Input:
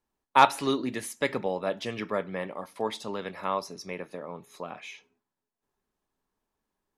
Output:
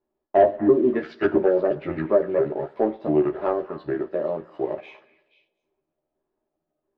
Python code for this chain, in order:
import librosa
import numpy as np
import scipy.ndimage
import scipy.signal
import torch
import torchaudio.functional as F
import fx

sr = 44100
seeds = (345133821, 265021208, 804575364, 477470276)

p1 = fx.pitch_trill(x, sr, semitones=-5.0, every_ms=341)
p2 = fx.env_lowpass_down(p1, sr, base_hz=460.0, full_db=-24.5)
p3 = fx.spec_box(p2, sr, start_s=0.96, length_s=0.35, low_hz=1300.0, high_hz=6900.0, gain_db=10)
p4 = np.clip(p3, -10.0 ** (-19.5 / 20.0), 10.0 ** (-19.5 / 20.0))
p5 = fx.small_body(p4, sr, hz=(370.0, 580.0), ring_ms=35, db=17)
p6 = fx.leveller(p5, sr, passes=1)
p7 = fx.air_absorb(p6, sr, metres=330.0)
p8 = fx.doubler(p7, sr, ms=13.0, db=-2.5)
p9 = p8 + fx.echo_stepped(p8, sr, ms=240, hz=1400.0, octaves=1.4, feedback_pct=70, wet_db=-9.5, dry=0)
p10 = fx.rev_double_slope(p9, sr, seeds[0], early_s=0.49, late_s=1.8, knee_db=-17, drr_db=14.5)
y = p10 * librosa.db_to_amplitude(-3.0)